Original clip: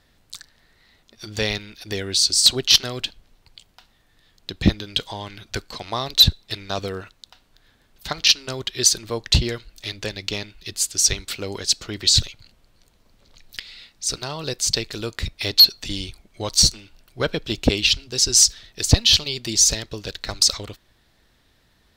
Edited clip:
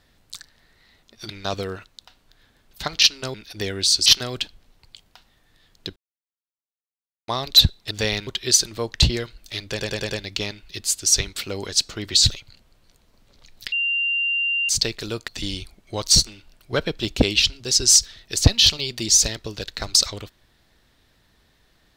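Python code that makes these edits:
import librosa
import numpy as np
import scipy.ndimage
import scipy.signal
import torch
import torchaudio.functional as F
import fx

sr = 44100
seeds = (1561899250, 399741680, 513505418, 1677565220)

y = fx.edit(x, sr, fx.swap(start_s=1.29, length_s=0.36, other_s=6.54, other_length_s=2.05),
    fx.cut(start_s=2.37, length_s=0.32),
    fx.silence(start_s=4.59, length_s=1.32),
    fx.stutter(start_s=10.03, slice_s=0.1, count=5),
    fx.bleep(start_s=13.64, length_s=0.97, hz=2780.0, db=-19.5),
    fx.cut(start_s=15.2, length_s=0.55), tone=tone)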